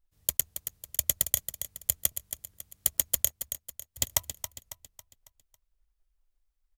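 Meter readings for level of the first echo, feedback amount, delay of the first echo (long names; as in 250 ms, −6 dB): −10.0 dB, 44%, 275 ms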